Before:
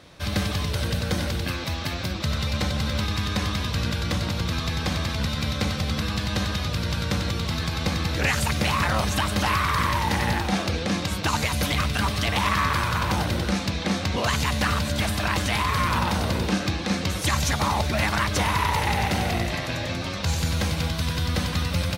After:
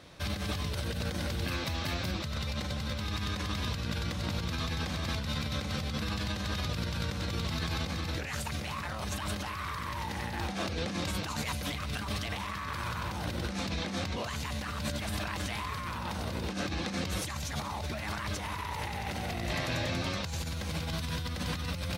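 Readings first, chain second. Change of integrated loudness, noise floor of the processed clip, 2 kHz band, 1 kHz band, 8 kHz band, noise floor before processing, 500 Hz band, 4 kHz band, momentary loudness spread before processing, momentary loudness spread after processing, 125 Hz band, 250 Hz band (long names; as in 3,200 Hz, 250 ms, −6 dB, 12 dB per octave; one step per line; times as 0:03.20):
−10.0 dB, −37 dBFS, −10.5 dB, −11.5 dB, −9.5 dB, −30 dBFS, −9.0 dB, −9.0 dB, 4 LU, 3 LU, −9.5 dB, −9.5 dB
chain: compressor whose output falls as the input rises −28 dBFS, ratio −1
level −6.5 dB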